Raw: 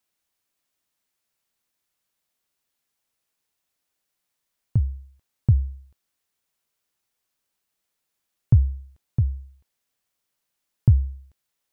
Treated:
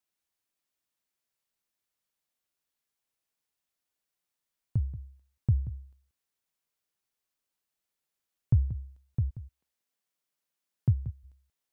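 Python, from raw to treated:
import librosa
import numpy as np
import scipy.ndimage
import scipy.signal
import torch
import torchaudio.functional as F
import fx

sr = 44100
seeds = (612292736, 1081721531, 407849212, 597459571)

p1 = fx.highpass(x, sr, hz=fx.line((9.29, 210.0), (11.05, 77.0)), slope=24, at=(9.29, 11.05), fade=0.02)
p2 = p1 + fx.echo_single(p1, sr, ms=182, db=-14.0, dry=0)
y = F.gain(torch.from_numpy(p2), -7.5).numpy()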